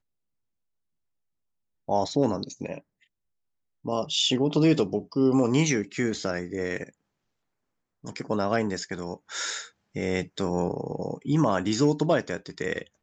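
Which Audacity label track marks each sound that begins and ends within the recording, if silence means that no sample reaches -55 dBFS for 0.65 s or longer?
1.880000	3.040000	sound
3.840000	6.940000	sound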